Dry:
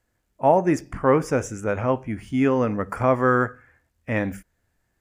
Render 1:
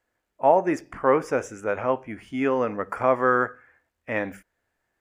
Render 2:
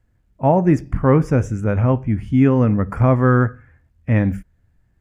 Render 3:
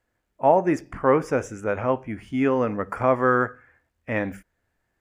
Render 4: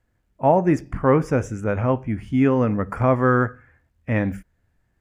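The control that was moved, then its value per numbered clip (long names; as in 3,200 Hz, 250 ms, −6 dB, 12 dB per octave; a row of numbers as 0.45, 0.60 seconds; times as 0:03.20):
bass and treble, bass: −13, +14, −5, +6 decibels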